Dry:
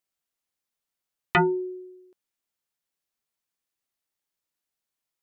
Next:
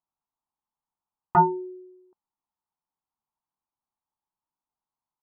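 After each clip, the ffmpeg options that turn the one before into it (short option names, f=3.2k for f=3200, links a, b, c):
-af "firequalizer=gain_entry='entry(220,0);entry(540,-9);entry(880,10);entry(2200,-30)':delay=0.05:min_phase=1"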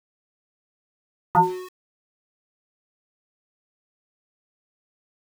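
-af "aeval=exprs='val(0)*gte(abs(val(0)),0.0168)':c=same"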